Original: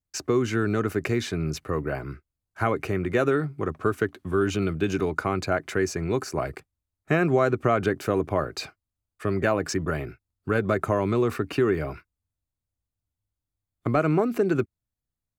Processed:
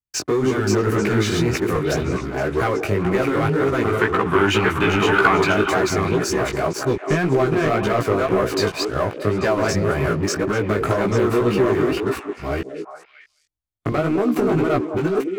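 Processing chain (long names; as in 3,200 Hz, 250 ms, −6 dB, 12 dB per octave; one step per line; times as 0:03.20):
delay that plays each chunk backwards 435 ms, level 0 dB
leveller curve on the samples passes 3
downward compressor, threshold −14 dBFS, peak gain reduction 5.5 dB
0:03.99–0:05.52: flat-topped bell 1,600 Hz +9.5 dB 2.4 octaves
on a send: echo through a band-pass that steps 210 ms, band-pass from 370 Hz, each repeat 1.4 octaves, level −3.5 dB
on the sum: chorus effect 1.9 Hz, delay 15 ms, depth 5.1 ms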